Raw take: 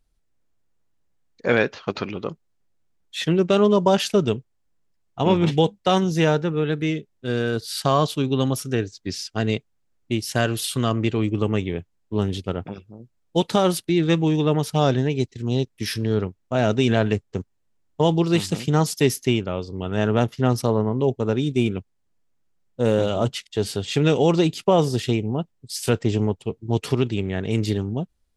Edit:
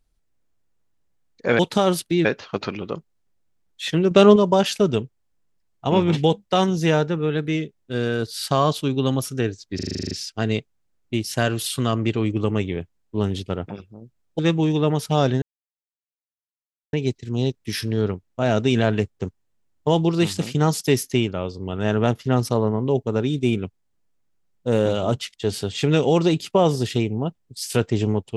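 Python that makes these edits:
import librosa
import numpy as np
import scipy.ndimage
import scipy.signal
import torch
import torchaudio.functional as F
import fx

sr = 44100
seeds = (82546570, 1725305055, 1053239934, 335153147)

y = fx.edit(x, sr, fx.clip_gain(start_s=3.45, length_s=0.25, db=5.5),
    fx.stutter(start_s=9.09, slice_s=0.04, count=10),
    fx.move(start_s=13.37, length_s=0.66, to_s=1.59),
    fx.insert_silence(at_s=15.06, length_s=1.51), tone=tone)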